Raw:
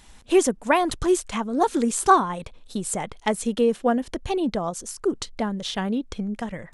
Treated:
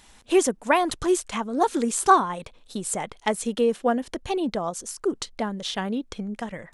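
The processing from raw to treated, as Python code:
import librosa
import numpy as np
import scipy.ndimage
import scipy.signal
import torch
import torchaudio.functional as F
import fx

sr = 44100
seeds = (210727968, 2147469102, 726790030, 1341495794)

y = fx.low_shelf(x, sr, hz=180.0, db=-7.5)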